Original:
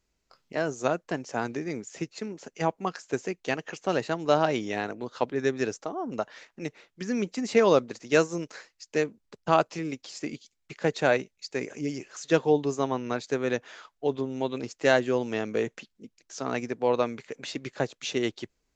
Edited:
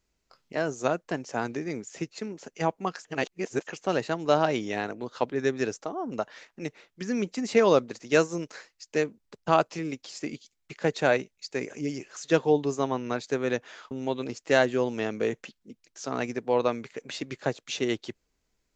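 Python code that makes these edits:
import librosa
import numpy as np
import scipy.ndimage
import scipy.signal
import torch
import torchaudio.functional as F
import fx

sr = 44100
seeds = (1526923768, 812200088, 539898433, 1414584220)

y = fx.edit(x, sr, fx.reverse_span(start_s=3.05, length_s=0.62),
    fx.cut(start_s=13.91, length_s=0.34), tone=tone)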